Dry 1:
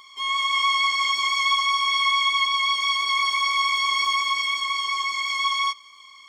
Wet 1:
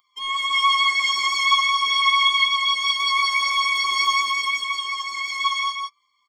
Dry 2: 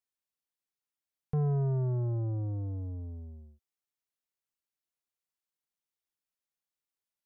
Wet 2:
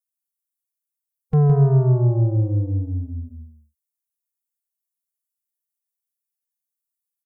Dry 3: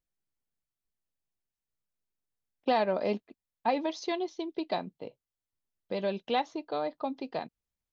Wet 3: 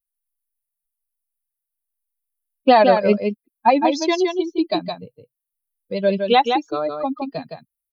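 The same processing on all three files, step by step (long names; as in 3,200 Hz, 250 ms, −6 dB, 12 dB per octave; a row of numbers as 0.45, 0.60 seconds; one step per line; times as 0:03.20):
spectral dynamics exaggerated over time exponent 2
single-tap delay 164 ms −5.5 dB
loudness normalisation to −19 LKFS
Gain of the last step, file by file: +6.0, +14.0, +16.5 decibels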